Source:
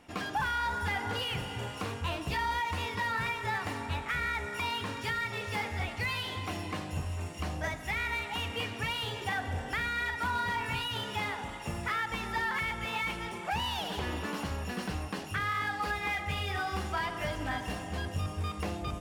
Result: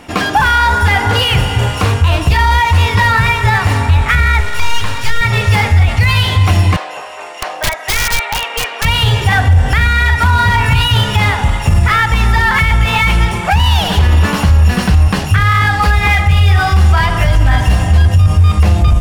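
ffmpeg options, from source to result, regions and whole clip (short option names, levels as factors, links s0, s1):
-filter_complex "[0:a]asettb=1/sr,asplit=3[s0][s1][s2];[s0]atrim=end=4.404[s3];[s1]atrim=start=4.4:end=5.21,asetpts=PTS-STARTPTS,afade=t=in:d=0.004:c=qsin,afade=t=out:st=0.806:d=0.004:c=qsin,equalizer=f=130:w=0.34:g=-9.5,aeval=exprs='clip(val(0),-1,0.00473)':c=same[s4];[s2]atrim=start=5.206[s5];[s3][s4]acrossfade=d=0.004:c1=hsin:c2=qsin[s6];[s6][s5]acrossfade=d=0.004:c1=qsin:c2=hsin,asettb=1/sr,asplit=3[s7][s8][s9];[s7]atrim=end=6.764[s10];[s8]atrim=start=6.76:end=8.85,asetpts=PTS-STARTPTS,afade=t=in:d=0.004:c=qsin,afade=t=out:st=2.086:d=0.004:c=qsin,highpass=f=480:w=0.5412,highpass=f=480:w=1.3066,aemphasis=mode=reproduction:type=75kf,aeval=exprs='(mod(33.5*val(0)+1,2)-1)/33.5':c=same[s11];[s9]atrim=start=8.846[s12];[s10][s11]acrossfade=d=0.004:c1=hsin:c2=qsin[s13];[s13][s12]acrossfade=d=0.004:c1=qsin:c2=hsin,asubboost=boost=8.5:cutoff=100,alimiter=level_in=12.6:limit=0.891:release=50:level=0:latency=1,volume=0.891"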